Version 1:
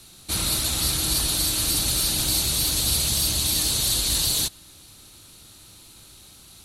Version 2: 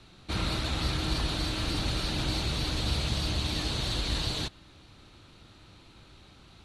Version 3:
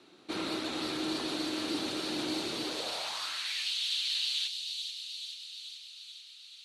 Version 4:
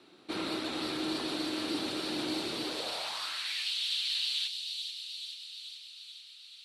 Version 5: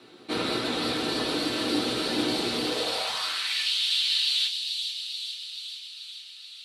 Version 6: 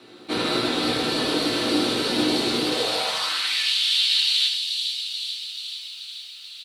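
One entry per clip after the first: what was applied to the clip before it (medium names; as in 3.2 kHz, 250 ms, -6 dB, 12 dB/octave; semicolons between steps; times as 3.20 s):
low-pass 2.6 kHz 12 dB/octave
feedback echo behind a high-pass 434 ms, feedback 66%, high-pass 3.7 kHz, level -4 dB; high-pass sweep 320 Hz -> 3 kHz, 2.61–3.73 s; trim -4 dB
peaking EQ 6.5 kHz -6.5 dB 0.25 oct
reverberation RT60 0.35 s, pre-delay 4 ms, DRR 2 dB; trim +5.5 dB
on a send: early reflections 20 ms -16 dB, 33 ms -15 dB, 76 ms -5.5 dB; on the sum: bit-crushed delay 127 ms, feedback 35%, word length 8-bit, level -15 dB; trim +3 dB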